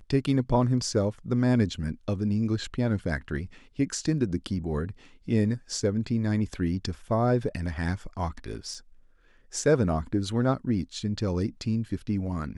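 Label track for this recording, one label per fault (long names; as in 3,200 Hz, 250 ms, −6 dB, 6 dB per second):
8.740000	8.740000	drop-out 4.4 ms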